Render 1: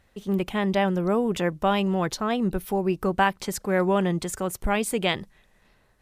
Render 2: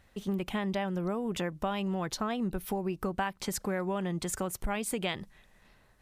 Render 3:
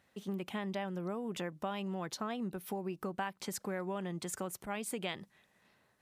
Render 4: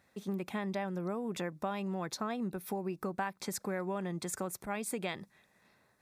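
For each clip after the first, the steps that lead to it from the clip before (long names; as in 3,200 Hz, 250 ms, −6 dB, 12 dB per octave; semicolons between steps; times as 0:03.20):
downward compressor, threshold −28 dBFS, peak gain reduction 12 dB; parametric band 440 Hz −2.5 dB 0.77 octaves
high-pass filter 140 Hz 12 dB per octave; level −5.5 dB
notch filter 3,000 Hz, Q 5; level +2 dB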